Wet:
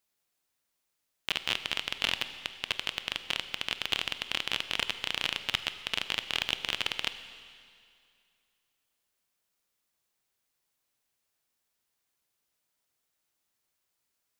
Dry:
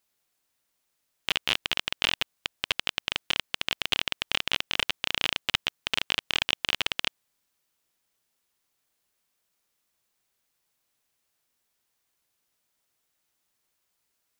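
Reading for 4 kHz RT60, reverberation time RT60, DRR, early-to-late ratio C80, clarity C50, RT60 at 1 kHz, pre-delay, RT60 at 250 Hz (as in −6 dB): 2.3 s, 2.3 s, 10.5 dB, 12.0 dB, 11.5 dB, 2.3 s, 25 ms, 2.3 s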